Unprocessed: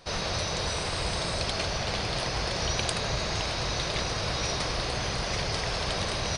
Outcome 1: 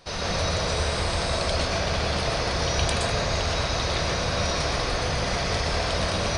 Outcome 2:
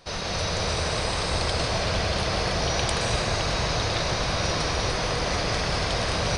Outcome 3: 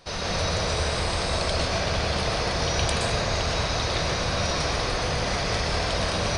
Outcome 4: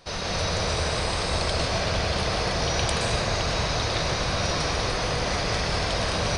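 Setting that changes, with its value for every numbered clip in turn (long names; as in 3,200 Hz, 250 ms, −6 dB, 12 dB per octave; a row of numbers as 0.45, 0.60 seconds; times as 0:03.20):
dense smooth reverb, RT60: 0.55, 5.2, 1.1, 2.4 seconds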